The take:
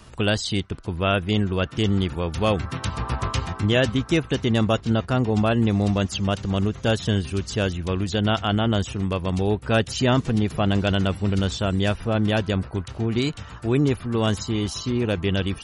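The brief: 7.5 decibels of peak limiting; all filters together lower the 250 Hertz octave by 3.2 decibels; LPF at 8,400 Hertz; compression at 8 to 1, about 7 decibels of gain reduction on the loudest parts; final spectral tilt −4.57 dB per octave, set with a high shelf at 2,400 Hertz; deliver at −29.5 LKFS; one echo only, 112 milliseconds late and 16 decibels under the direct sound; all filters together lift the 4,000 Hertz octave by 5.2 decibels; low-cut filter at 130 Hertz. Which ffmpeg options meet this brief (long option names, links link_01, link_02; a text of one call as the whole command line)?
ffmpeg -i in.wav -af "highpass=130,lowpass=8400,equalizer=frequency=250:width_type=o:gain=-3.5,highshelf=frequency=2400:gain=3,equalizer=frequency=4000:width_type=o:gain=4.5,acompressor=threshold=-22dB:ratio=8,alimiter=limit=-18dB:level=0:latency=1,aecho=1:1:112:0.158" out.wav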